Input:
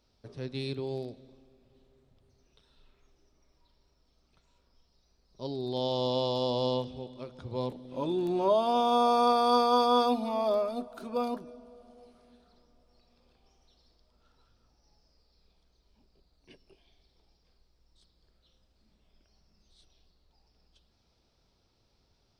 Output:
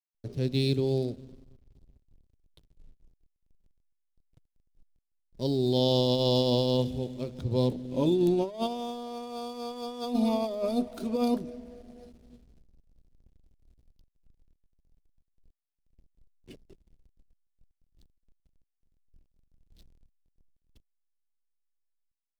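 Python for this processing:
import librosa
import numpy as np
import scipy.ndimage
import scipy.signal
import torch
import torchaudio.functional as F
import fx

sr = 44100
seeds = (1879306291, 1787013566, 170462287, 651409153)

y = fx.over_compress(x, sr, threshold_db=-30.0, ratio=-0.5)
y = fx.backlash(y, sr, play_db=-49.5)
y = fx.peak_eq(y, sr, hz=1200.0, db=-14.0, octaves=2.0)
y = y * 10.0 ** (8.0 / 20.0)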